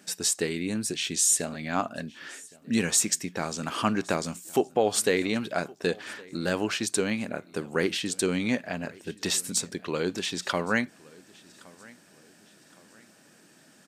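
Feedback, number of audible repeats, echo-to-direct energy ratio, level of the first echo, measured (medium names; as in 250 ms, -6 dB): 40%, 2, -23.5 dB, -24.0 dB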